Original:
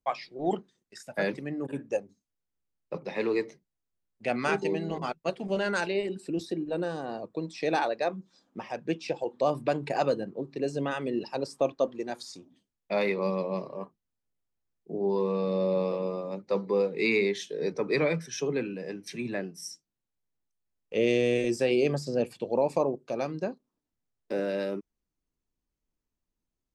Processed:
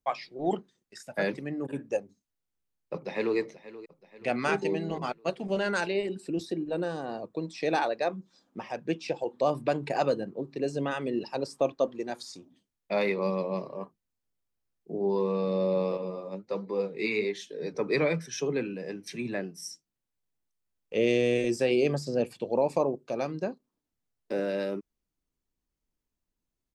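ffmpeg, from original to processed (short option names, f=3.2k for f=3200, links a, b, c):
-filter_complex "[0:a]asplit=2[a][b];[b]afade=t=in:st=2.93:d=0.01,afade=t=out:st=3.37:d=0.01,aecho=0:1:480|960|1440|1920|2400:0.149624|0.082293|0.0452611|0.0248936|0.0136915[c];[a][c]amix=inputs=2:normalize=0,asettb=1/sr,asplit=3[d][e][f];[d]atrim=end=15.974[g];[e]atrim=start=15.97:end=17.74,asetpts=PTS-STARTPTS,afade=t=in:d=0.004:c=qsin,afade=t=out:st=1.766:d=0.004:c=qsin,flanger=delay=2.9:depth=8:regen=45:speed=1.3:shape=triangular[h];[f]atrim=start=17.736[i];[g][h]acrossfade=d=0.004:c1=hsin:c2=qsin[j];[j][i]acrossfade=d=0.004:c1=qsin:c2=hsin"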